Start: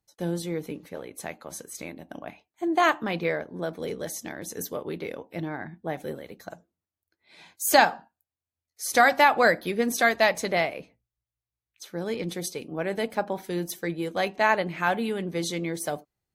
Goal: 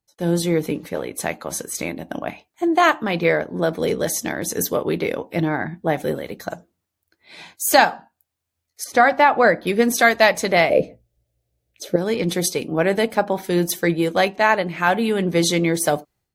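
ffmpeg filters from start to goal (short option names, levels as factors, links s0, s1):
-filter_complex "[0:a]asettb=1/sr,asplit=3[s0][s1][s2];[s0]atrim=end=8.844[s3];[s1]atrim=start=8.84:end=9.67,asetpts=PTS-STARTPTS,afade=t=in:d=0.004:c=qsin,afade=t=out:st=0.826:d=0.004:c=qsin,lowpass=f=1600:p=1[s4];[s2]atrim=start=9.666[s5];[s3][s4]acrossfade=d=0.004:c1=hsin:c2=qsin[s6];[s6][s5]acrossfade=d=0.004:c1=qsin:c2=hsin,asettb=1/sr,asplit=3[s7][s8][s9];[s7]atrim=end=10.704[s10];[s8]atrim=start=10.7:end=11.96,asetpts=PTS-STARTPTS,afade=t=in:d=0.004:c=qsin,afade=t=out:st=1.256:d=0.004:c=qsin,lowshelf=f=770:t=q:w=3:g=9[s11];[s9]atrim=start=11.956[s12];[s10][s11]acrossfade=d=0.004:c1=hsin:c2=qsin[s13];[s13][s12]acrossfade=d=0.004:c1=qsin:c2=hsin,dynaudnorm=f=100:g=5:m=4.22,volume=0.891"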